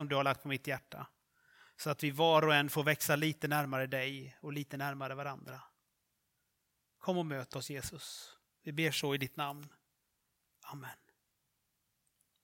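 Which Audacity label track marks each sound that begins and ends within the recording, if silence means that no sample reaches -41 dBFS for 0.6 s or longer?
1.800000	5.570000	sound
7.040000	9.630000	sound
10.680000	10.910000	sound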